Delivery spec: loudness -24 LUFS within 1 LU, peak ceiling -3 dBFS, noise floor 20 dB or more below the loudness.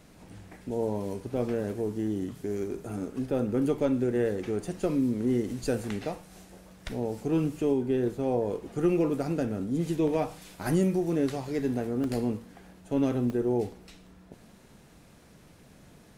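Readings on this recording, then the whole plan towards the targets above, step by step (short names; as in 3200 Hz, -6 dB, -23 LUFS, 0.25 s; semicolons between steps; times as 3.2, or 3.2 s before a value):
dropouts 4; longest dropout 1.7 ms; loudness -29.5 LUFS; peak -13.5 dBFS; loudness target -24.0 LUFS
-> interpolate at 1.37/2.9/12.04/13.3, 1.7 ms; gain +5.5 dB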